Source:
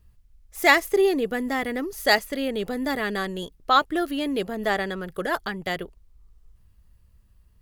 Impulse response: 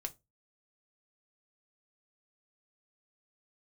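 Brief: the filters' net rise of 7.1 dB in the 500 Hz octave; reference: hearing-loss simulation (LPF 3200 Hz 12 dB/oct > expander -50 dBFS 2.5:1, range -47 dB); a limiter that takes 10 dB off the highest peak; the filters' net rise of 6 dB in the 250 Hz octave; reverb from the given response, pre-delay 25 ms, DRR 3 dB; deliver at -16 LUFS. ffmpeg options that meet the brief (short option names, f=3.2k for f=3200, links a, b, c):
-filter_complex "[0:a]equalizer=f=250:t=o:g=4.5,equalizer=f=500:t=o:g=8,alimiter=limit=-12dB:level=0:latency=1,asplit=2[a][b];[1:a]atrim=start_sample=2205,adelay=25[c];[b][c]afir=irnorm=-1:irlink=0,volume=-1.5dB[d];[a][d]amix=inputs=2:normalize=0,lowpass=3.2k,agate=range=-47dB:threshold=-50dB:ratio=2.5,volume=5dB"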